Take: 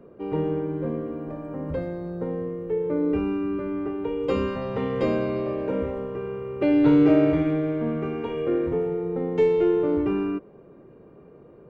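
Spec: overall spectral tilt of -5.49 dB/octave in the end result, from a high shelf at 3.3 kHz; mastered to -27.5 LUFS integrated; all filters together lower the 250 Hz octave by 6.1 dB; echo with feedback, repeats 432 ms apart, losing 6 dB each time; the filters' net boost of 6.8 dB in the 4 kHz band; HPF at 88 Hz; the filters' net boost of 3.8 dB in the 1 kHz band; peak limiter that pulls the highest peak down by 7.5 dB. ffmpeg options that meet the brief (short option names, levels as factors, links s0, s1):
-af "highpass=88,equalizer=f=250:t=o:g=-8.5,equalizer=f=1000:t=o:g=4,highshelf=f=3300:g=9,equalizer=f=4000:t=o:g=3.5,alimiter=limit=0.119:level=0:latency=1,aecho=1:1:432|864|1296|1728|2160|2592:0.501|0.251|0.125|0.0626|0.0313|0.0157,volume=1.12"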